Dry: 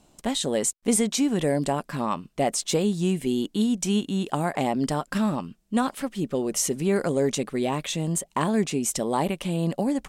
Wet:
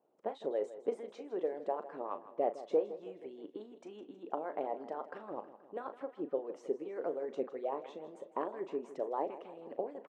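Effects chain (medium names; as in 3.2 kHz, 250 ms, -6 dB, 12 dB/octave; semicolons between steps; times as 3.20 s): harmonic-percussive split harmonic -17 dB; ladder band-pass 550 Hz, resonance 35%; doubling 38 ms -11.5 dB; on a send: feedback delay 159 ms, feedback 58%, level -15 dB; on the sum: trim +4 dB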